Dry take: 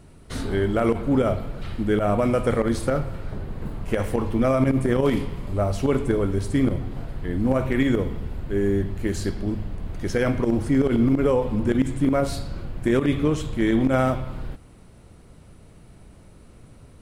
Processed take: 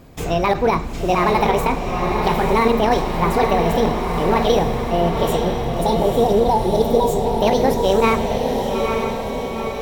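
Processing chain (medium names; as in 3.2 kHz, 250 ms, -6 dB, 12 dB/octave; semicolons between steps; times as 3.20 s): spectral selection erased 10.00–12.57 s, 580–1900 Hz; speed mistake 45 rpm record played at 78 rpm; echo that smears into a reverb 894 ms, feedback 59%, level -4 dB; trim +3.5 dB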